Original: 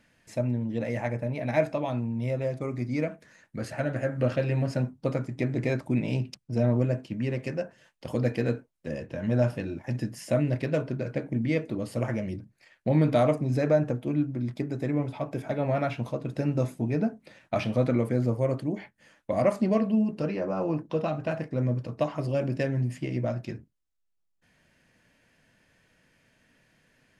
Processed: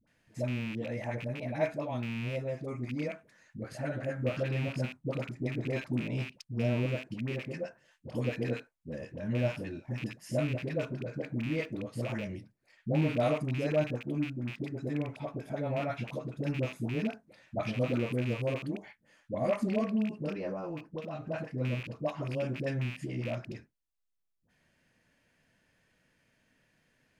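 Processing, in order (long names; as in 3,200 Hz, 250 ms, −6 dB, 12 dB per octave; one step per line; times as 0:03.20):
loose part that buzzes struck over −28 dBFS, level −24 dBFS
0:20.52–0:21.21: downward compressor, threshold −29 dBFS, peak gain reduction 7 dB
all-pass dispersion highs, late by 73 ms, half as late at 600 Hz
level −6 dB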